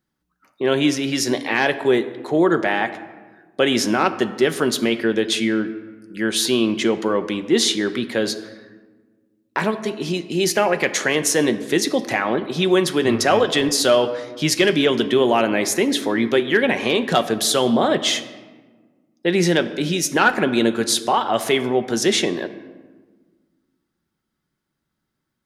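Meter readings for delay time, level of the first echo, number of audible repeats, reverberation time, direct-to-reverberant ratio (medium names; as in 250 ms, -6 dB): no echo, no echo, no echo, 1.3 s, 8.5 dB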